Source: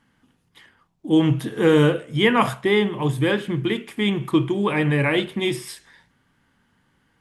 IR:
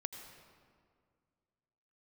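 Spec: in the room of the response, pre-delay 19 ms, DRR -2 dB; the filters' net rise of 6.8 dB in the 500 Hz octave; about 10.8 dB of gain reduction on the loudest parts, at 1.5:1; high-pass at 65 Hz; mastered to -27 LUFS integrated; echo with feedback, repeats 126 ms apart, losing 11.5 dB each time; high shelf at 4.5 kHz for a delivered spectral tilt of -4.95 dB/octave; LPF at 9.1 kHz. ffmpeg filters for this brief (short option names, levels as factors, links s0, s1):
-filter_complex "[0:a]highpass=65,lowpass=9100,equalizer=f=500:t=o:g=8,highshelf=f=4500:g=7.5,acompressor=threshold=0.0141:ratio=1.5,aecho=1:1:126|252|378:0.266|0.0718|0.0194,asplit=2[s0][s1];[1:a]atrim=start_sample=2205,adelay=19[s2];[s1][s2]afir=irnorm=-1:irlink=0,volume=1.5[s3];[s0][s3]amix=inputs=2:normalize=0,volume=0.501"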